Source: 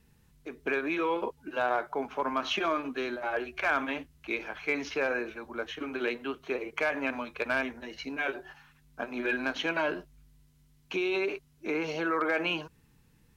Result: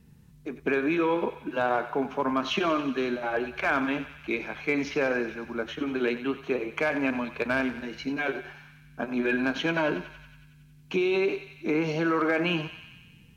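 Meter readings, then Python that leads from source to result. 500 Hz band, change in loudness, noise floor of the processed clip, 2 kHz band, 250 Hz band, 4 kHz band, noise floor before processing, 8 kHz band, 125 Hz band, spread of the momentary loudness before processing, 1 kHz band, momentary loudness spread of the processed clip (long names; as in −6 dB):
+4.5 dB, +3.5 dB, −54 dBFS, +1.5 dB, +7.5 dB, +1.5 dB, −64 dBFS, can't be measured, +11.5 dB, 9 LU, +2.0 dB, 9 LU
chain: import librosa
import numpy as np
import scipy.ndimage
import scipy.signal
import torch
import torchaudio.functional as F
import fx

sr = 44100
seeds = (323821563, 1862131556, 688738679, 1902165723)

y = fx.peak_eq(x, sr, hz=160.0, db=11.0, octaves=2.0)
y = fx.echo_thinned(y, sr, ms=92, feedback_pct=72, hz=930.0, wet_db=-11)
y = y * librosa.db_to_amplitude(1.0)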